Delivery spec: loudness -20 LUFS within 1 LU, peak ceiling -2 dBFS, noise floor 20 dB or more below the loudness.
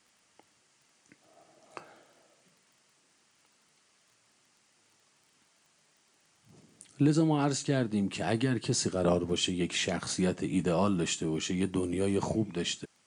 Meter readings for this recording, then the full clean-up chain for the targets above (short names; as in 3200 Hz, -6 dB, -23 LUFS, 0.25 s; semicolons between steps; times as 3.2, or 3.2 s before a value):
ticks 18/s; loudness -30.0 LUFS; peak -15.0 dBFS; loudness target -20.0 LUFS
-> de-click; gain +10 dB